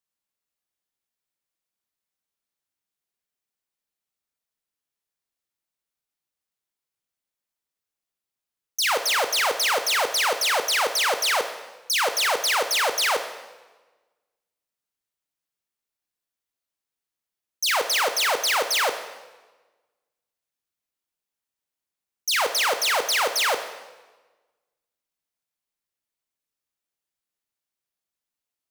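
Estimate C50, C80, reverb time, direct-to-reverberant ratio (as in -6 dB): 9.5 dB, 11.5 dB, 1.2 s, 7.5 dB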